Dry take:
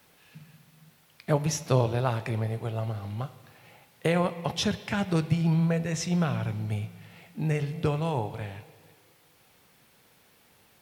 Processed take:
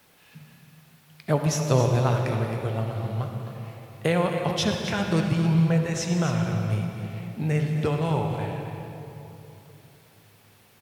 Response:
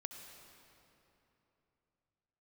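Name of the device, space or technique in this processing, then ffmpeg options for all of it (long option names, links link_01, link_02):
cave: -filter_complex "[0:a]aecho=1:1:267:0.282[link_01];[1:a]atrim=start_sample=2205[link_02];[link_01][link_02]afir=irnorm=-1:irlink=0,volume=6dB"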